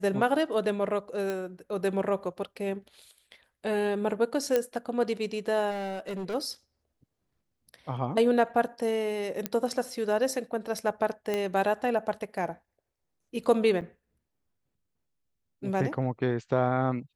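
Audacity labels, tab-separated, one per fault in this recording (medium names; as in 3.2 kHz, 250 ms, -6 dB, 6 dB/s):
1.300000	1.300000	pop -19 dBFS
4.560000	4.560000	pop -12 dBFS
5.700000	6.350000	clipped -31 dBFS
9.460000	9.460000	pop -12 dBFS
11.340000	11.340000	pop -16 dBFS
13.810000	13.820000	dropout 8.1 ms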